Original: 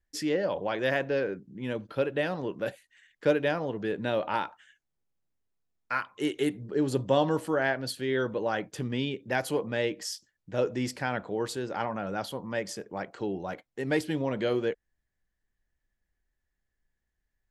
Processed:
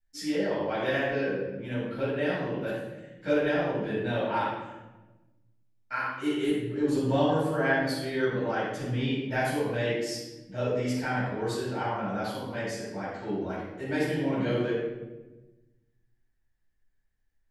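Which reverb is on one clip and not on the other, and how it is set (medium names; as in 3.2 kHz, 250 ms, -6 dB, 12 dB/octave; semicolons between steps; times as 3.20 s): simulated room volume 560 m³, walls mixed, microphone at 7.7 m; trim -14.5 dB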